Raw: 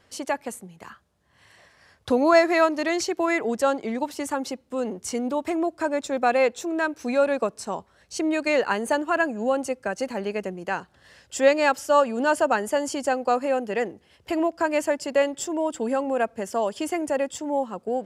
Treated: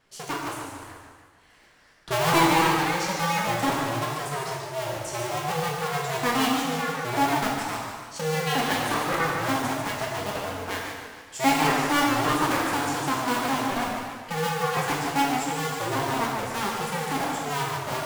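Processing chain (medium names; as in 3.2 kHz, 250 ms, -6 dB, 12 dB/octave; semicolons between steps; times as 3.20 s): cycle switcher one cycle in 2, inverted; plate-style reverb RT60 1.3 s, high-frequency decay 0.85×, DRR -2 dB; modulated delay 146 ms, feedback 49%, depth 158 cents, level -6.5 dB; trim -7 dB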